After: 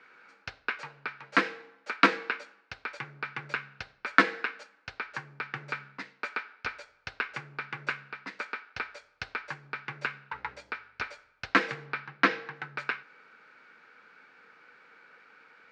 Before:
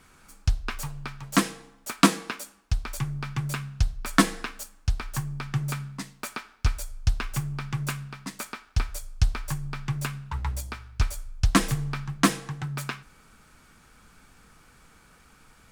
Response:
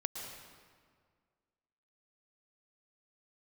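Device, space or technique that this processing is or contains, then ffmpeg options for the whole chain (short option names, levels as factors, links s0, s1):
phone earpiece: -filter_complex "[0:a]highpass=460,equalizer=f=480:t=q:w=4:g=5,equalizer=f=690:t=q:w=4:g=-5,equalizer=f=1100:t=q:w=4:g=-5,equalizer=f=1500:t=q:w=4:g=6,equalizer=f=2200:t=q:w=4:g=4,equalizer=f=3300:t=q:w=4:g=-7,lowpass=f=3800:w=0.5412,lowpass=f=3800:w=1.3066,asettb=1/sr,asplit=3[s0][s1][s2];[s0]atrim=end=11.864[s3];[s1]atrim=start=11.86:end=12.56,asetpts=PTS-STARTPTS,afade=t=in:d=0.004:c=qsin,afade=t=out:st=0.696:d=0.004:c=qsin,lowpass=f=5900:w=0.5412,lowpass=f=5900:w=1.3066[s4];[s2]atrim=start=12.556[s5];[s3][s4]acrossfade=d=0.004:c1=hsin:c2=qsin[s6];[s6][s5]acrossfade=d=0.004:c1=qsin:c2=hsin,volume=1.12"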